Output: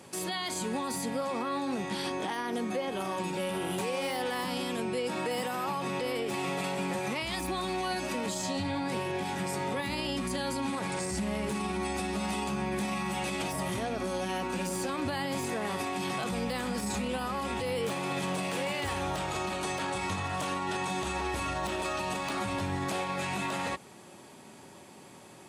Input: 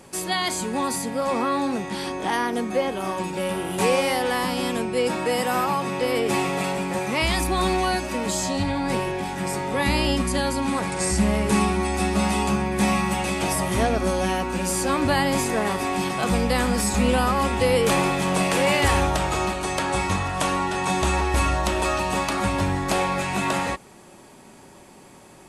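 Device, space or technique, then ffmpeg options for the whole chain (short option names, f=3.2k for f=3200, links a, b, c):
broadcast voice chain: -af "highpass=f=81:w=0.5412,highpass=f=81:w=1.3066,deesser=0.5,acompressor=threshold=-23dB:ratio=6,equalizer=f=3.5k:t=o:w=0.77:g=3,alimiter=limit=-20.5dB:level=0:latency=1:release=36,volume=-3.5dB"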